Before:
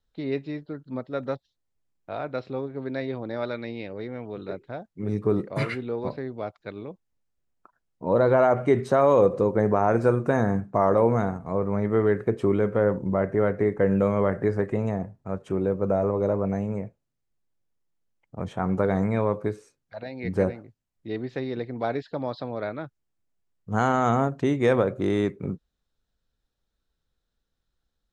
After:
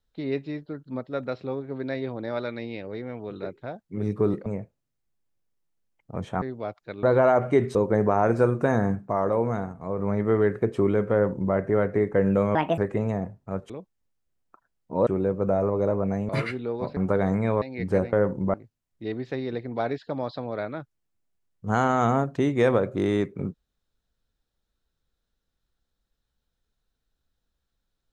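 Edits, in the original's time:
1.27–2.33 s: delete
5.52–6.20 s: swap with 16.70–18.66 s
6.81–8.18 s: move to 15.48 s
8.90–9.40 s: delete
10.73–11.64 s: gain -4 dB
12.78–13.19 s: copy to 20.58 s
14.20–14.56 s: speed 158%
19.31–20.07 s: delete

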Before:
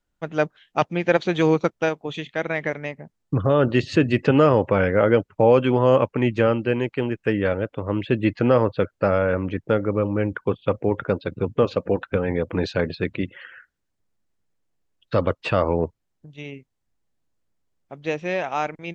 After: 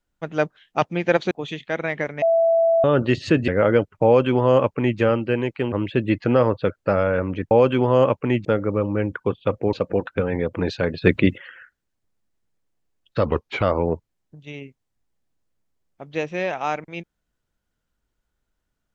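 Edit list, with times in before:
1.31–1.97 s: delete
2.88–3.50 s: bleep 663 Hz -14 dBFS
4.14–4.86 s: delete
5.43–6.37 s: copy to 9.66 s
7.10–7.87 s: delete
10.94–11.69 s: delete
12.98–13.34 s: gain +9 dB
15.22–15.53 s: speed 86%

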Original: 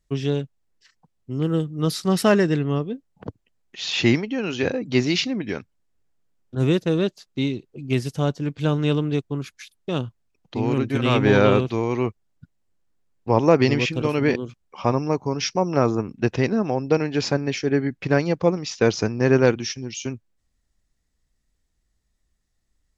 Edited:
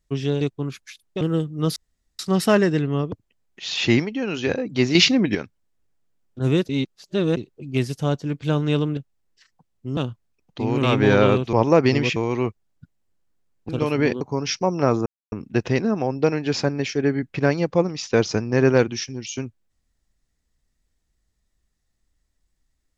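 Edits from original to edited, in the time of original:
0.41–1.41 s: swap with 9.13–9.93 s
1.96 s: insert room tone 0.43 s
2.89–3.28 s: delete
5.11–5.51 s: gain +7.5 dB
6.85–7.53 s: reverse
10.79–11.06 s: delete
13.29–13.92 s: move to 11.76 s
14.44–15.15 s: delete
16.00 s: insert silence 0.26 s

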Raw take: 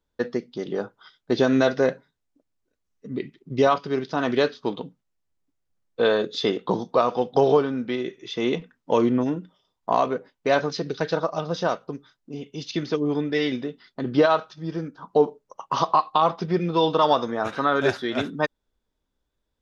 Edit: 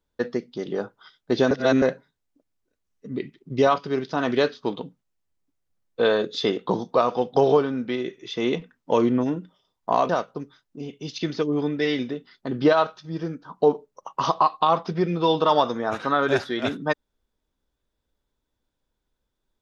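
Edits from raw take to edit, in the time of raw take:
1.51–1.82 s: reverse
10.09–11.62 s: delete

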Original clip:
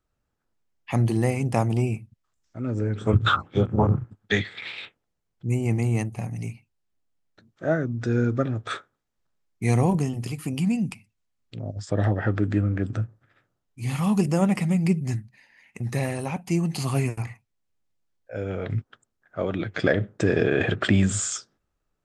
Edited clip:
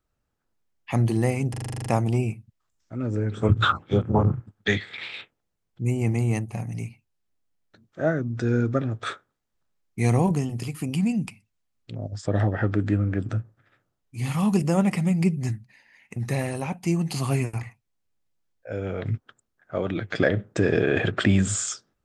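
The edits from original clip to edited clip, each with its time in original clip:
1.50 s: stutter 0.04 s, 10 plays

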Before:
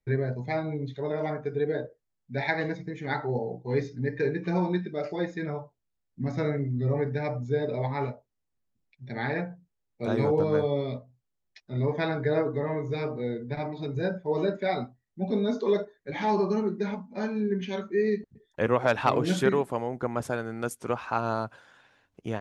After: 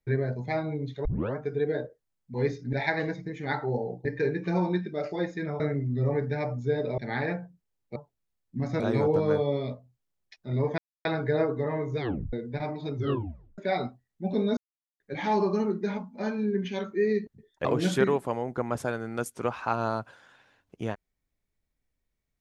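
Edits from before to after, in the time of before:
1.05 s: tape start 0.31 s
3.66–4.05 s: move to 2.34 s
5.60–6.44 s: move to 10.04 s
7.82–9.06 s: delete
12.02 s: insert silence 0.27 s
12.96 s: tape stop 0.34 s
13.92 s: tape stop 0.63 s
15.54–15.97 s: mute
18.62–19.10 s: delete

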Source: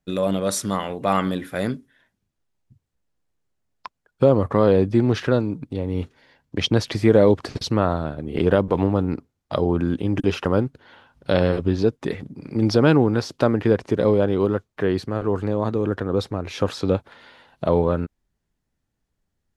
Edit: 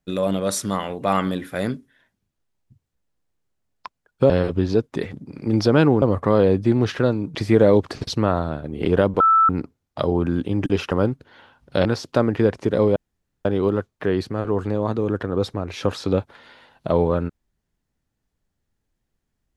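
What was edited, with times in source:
5.63–6.89 s: delete
8.74–9.03 s: bleep 1.32 kHz -11.5 dBFS
11.39–13.11 s: move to 4.30 s
14.22 s: insert room tone 0.49 s

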